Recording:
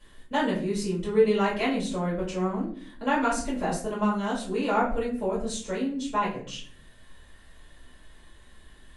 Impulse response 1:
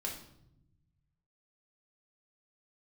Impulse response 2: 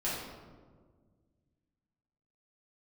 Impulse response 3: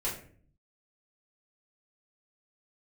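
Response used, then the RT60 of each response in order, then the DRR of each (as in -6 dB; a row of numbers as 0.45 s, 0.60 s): 3; 0.80 s, 1.6 s, 0.50 s; -1.0 dB, -9.5 dB, -8.0 dB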